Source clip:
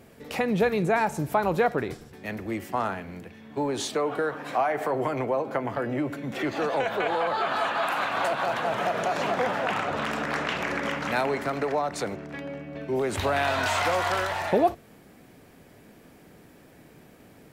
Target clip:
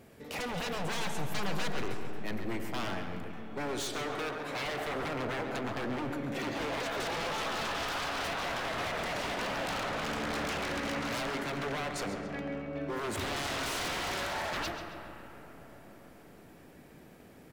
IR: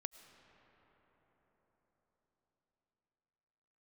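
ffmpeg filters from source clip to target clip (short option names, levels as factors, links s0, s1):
-filter_complex "[0:a]asettb=1/sr,asplit=3[s0][s1][s2];[s0]atrim=end=6.834[s3];[s1]atrim=start=6.83:end=7.41,asetpts=PTS-STARTPTS,afade=t=in:d=0.004:c=qsin,afade=t=out:st=0.576:d=0.004:c=qsin,tiltshelf=f=970:g=-3.5[s4];[s2]atrim=start=7.406[s5];[s3][s4]acrossfade=d=0.004:c1=hsin:c2=qsin[s6];[s6][s5]acrossfade=d=0.004:c1=qsin:c2=hsin,aeval=exprs='0.0447*(abs(mod(val(0)/0.0447+3,4)-2)-1)':c=same,asplit=2[s7][s8];[s8]adelay=136,lowpass=f=4400:p=1,volume=0.398,asplit=2[s9][s10];[s10]adelay=136,lowpass=f=4400:p=1,volume=0.52,asplit=2[s11][s12];[s12]adelay=136,lowpass=f=4400:p=1,volume=0.52,asplit=2[s13][s14];[s14]adelay=136,lowpass=f=4400:p=1,volume=0.52,asplit=2[s15][s16];[s16]adelay=136,lowpass=f=4400:p=1,volume=0.52,asplit=2[s17][s18];[s18]adelay=136,lowpass=f=4400:p=1,volume=0.52[s19];[s7][s9][s11][s13][s15][s17][s19]amix=inputs=7:normalize=0[s20];[1:a]atrim=start_sample=2205[s21];[s20][s21]afir=irnorm=-1:irlink=0"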